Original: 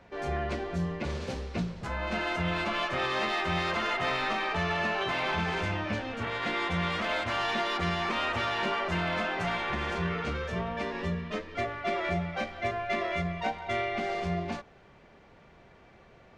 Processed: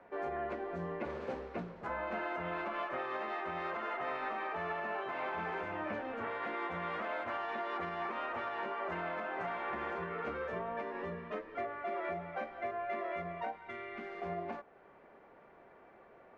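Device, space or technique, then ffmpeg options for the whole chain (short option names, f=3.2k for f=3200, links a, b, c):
DJ mixer with the lows and highs turned down: -filter_complex "[0:a]acrossover=split=260 2000:gain=0.141 1 0.0891[a][b][c];[a][b][c]amix=inputs=3:normalize=0,alimiter=level_in=5dB:limit=-24dB:level=0:latency=1:release=366,volume=-5dB,asettb=1/sr,asplit=3[d][e][f];[d]atrim=end=13.564[g];[e]atrim=start=13.56:end=14.22,asetpts=PTS-STARTPTS,afade=t=in:d=0.004:c=qsin,afade=t=out:st=0.656:d=0.004:c=qsin,equalizer=f=670:t=o:w=0.98:g=-13.5[h];[f]atrim=start=14.216[i];[g][h]acrossfade=d=0.004:c1=hsin:c2=qsin[j];[j][i]acrossfade=d=0.004:c1=qsin:c2=hsin"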